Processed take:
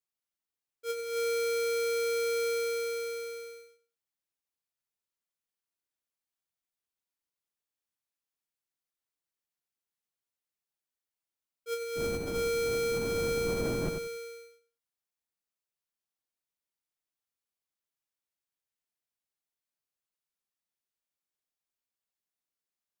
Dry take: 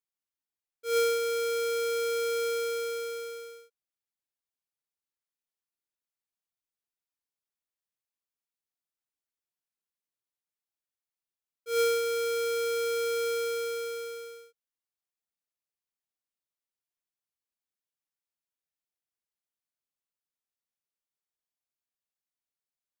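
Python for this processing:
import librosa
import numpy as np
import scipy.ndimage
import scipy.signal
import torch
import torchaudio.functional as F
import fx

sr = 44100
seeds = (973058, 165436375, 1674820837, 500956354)

y = fx.dmg_wind(x, sr, seeds[0], corner_hz=320.0, level_db=-26.0, at=(11.95, 13.88), fade=0.02)
y = fx.over_compress(y, sr, threshold_db=-29.0, ratio=-0.5)
y = fx.echo_feedback(y, sr, ms=92, feedback_pct=20, wet_db=-7)
y = F.gain(torch.from_numpy(y), -2.0).numpy()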